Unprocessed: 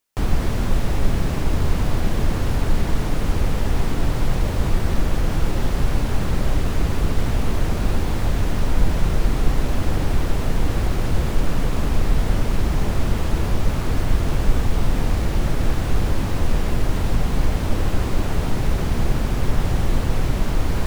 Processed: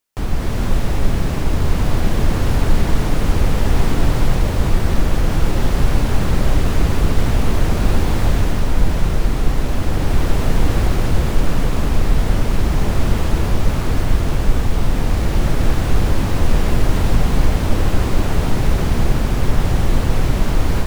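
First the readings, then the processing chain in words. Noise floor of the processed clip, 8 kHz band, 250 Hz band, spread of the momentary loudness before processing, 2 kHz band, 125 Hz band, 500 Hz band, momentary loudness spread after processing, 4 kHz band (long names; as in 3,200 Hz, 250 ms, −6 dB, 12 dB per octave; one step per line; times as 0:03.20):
−20 dBFS, +4.0 dB, +4.0 dB, 1 LU, +4.0 dB, +4.0 dB, +4.0 dB, 2 LU, +4.0 dB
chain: automatic gain control
level −1 dB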